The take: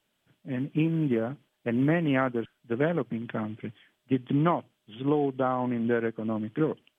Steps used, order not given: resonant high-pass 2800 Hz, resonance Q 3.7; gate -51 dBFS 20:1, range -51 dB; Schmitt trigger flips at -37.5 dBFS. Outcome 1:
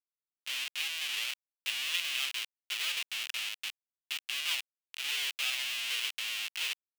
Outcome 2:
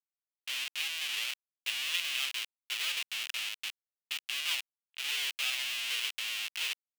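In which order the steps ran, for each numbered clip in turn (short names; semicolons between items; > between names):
gate > Schmitt trigger > resonant high-pass; Schmitt trigger > resonant high-pass > gate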